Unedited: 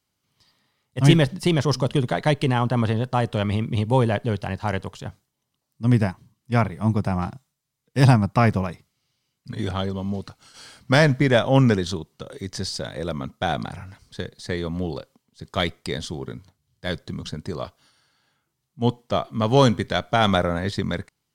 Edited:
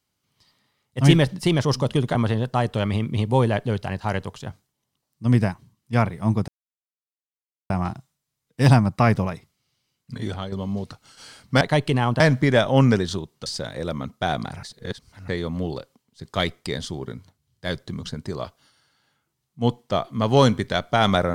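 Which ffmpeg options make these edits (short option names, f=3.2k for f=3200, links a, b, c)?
-filter_complex "[0:a]asplit=9[a][b][c][d][e][f][g][h][i];[a]atrim=end=2.152[j];[b]atrim=start=2.738:end=7.07,asetpts=PTS-STARTPTS,afade=t=out:st=4.328:d=0.004:c=hsin,apad=pad_dur=1.22[k];[c]atrim=start=7.07:end=9.89,asetpts=PTS-STARTPTS,afade=t=in:d=0.004:c=hsin,afade=t=out:st=2.46:d=0.36:silence=0.375837[l];[d]atrim=start=9.89:end=10.982,asetpts=PTS-STARTPTS,afade=t=in:d=0.004:c=hsin:silence=0.375837[m];[e]atrim=start=2.148:end=2.742[n];[f]atrim=start=10.978:end=12.242[o];[g]atrim=start=12.658:end=13.832[p];[h]atrim=start=13.828:end=14.482,asetpts=PTS-STARTPTS,areverse[q];[i]atrim=start=14.478[r];[k][l][m]concat=n=3:v=0:a=1[s];[j][s]acrossfade=d=0.004:c1=hsin:c2=hsin[t];[t][n]acrossfade=d=0.004:c1=hsin:c2=hsin[u];[u][o]acrossfade=d=0.004:c1=hsin:c2=hsin[v];[v][p]acrossfade=d=0.004:c1=hsin:c2=hsin[w];[w][q]acrossfade=d=0.004:c1=hsin:c2=hsin[x];[x][r]acrossfade=d=0.004:c1=hsin:c2=hsin"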